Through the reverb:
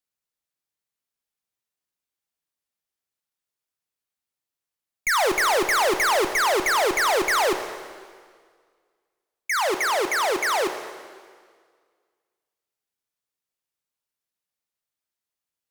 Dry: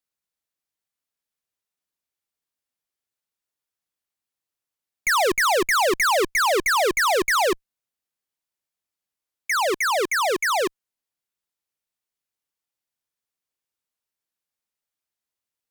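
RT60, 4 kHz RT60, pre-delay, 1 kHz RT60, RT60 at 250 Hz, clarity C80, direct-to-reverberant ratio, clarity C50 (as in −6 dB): 1.8 s, 1.7 s, 16 ms, 1.8 s, 1.7 s, 9.5 dB, 7.5 dB, 8.5 dB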